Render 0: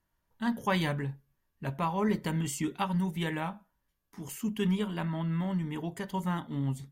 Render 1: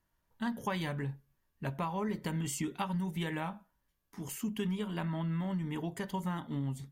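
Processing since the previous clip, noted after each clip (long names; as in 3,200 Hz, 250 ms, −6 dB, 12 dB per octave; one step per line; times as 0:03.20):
downward compressor, threshold −31 dBFS, peak gain reduction 8 dB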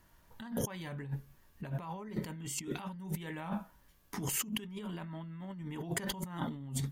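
compressor whose output falls as the input rises −46 dBFS, ratio −1
level +5.5 dB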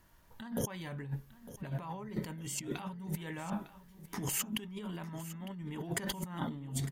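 repeating echo 905 ms, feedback 31%, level −15.5 dB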